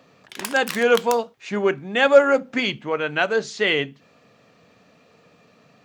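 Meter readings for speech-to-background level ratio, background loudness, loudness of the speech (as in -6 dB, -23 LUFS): 12.5 dB, -33.0 LUFS, -20.5 LUFS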